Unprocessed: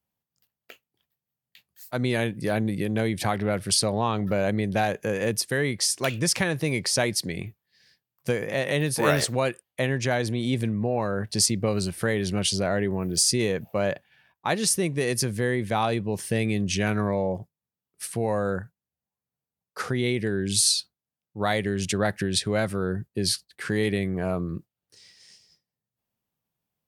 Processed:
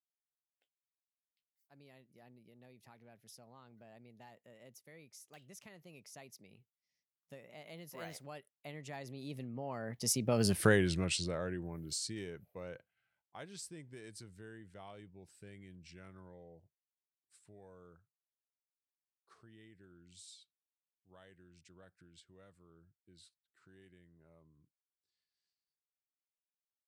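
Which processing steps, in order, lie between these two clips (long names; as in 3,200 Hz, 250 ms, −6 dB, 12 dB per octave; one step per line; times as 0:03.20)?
source passing by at 0:10.60, 40 m/s, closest 6.5 metres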